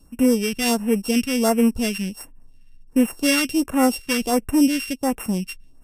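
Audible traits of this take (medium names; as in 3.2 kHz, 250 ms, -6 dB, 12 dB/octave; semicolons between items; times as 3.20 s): a buzz of ramps at a fixed pitch in blocks of 16 samples; phasing stages 2, 1.4 Hz, lowest notch 690–4200 Hz; MP3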